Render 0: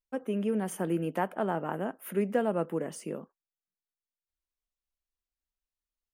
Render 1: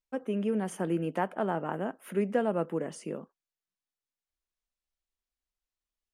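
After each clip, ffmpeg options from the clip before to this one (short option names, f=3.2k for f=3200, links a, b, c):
-af "lowpass=8.7k"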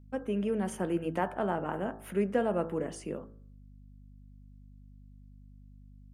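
-af "aeval=exprs='val(0)+0.00282*(sin(2*PI*50*n/s)+sin(2*PI*2*50*n/s)/2+sin(2*PI*3*50*n/s)/3+sin(2*PI*4*50*n/s)/4+sin(2*PI*5*50*n/s)/5)':c=same,bandreject=f=54.97:t=h:w=4,bandreject=f=109.94:t=h:w=4,bandreject=f=164.91:t=h:w=4,bandreject=f=219.88:t=h:w=4,bandreject=f=274.85:t=h:w=4,bandreject=f=329.82:t=h:w=4,bandreject=f=384.79:t=h:w=4,bandreject=f=439.76:t=h:w=4,bandreject=f=494.73:t=h:w=4,bandreject=f=549.7:t=h:w=4,bandreject=f=604.67:t=h:w=4,bandreject=f=659.64:t=h:w=4,bandreject=f=714.61:t=h:w=4,bandreject=f=769.58:t=h:w=4,bandreject=f=824.55:t=h:w=4,bandreject=f=879.52:t=h:w=4,bandreject=f=934.49:t=h:w=4,bandreject=f=989.46:t=h:w=4,bandreject=f=1.04443k:t=h:w=4,bandreject=f=1.0994k:t=h:w=4,bandreject=f=1.15437k:t=h:w=4,bandreject=f=1.20934k:t=h:w=4,bandreject=f=1.26431k:t=h:w=4,bandreject=f=1.31928k:t=h:w=4,bandreject=f=1.37425k:t=h:w=4,bandreject=f=1.42922k:t=h:w=4,bandreject=f=1.48419k:t=h:w=4,bandreject=f=1.53916k:t=h:w=4,bandreject=f=1.59413k:t=h:w=4,bandreject=f=1.6491k:t=h:w=4,bandreject=f=1.70407k:t=h:w=4,bandreject=f=1.75904k:t=h:w=4,bandreject=f=1.81401k:t=h:w=4"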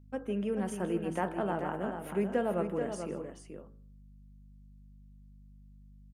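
-af "aecho=1:1:157|434:0.141|0.422,volume=-2dB"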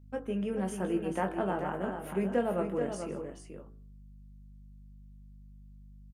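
-filter_complex "[0:a]asplit=2[a][b];[b]adelay=21,volume=-7dB[c];[a][c]amix=inputs=2:normalize=0"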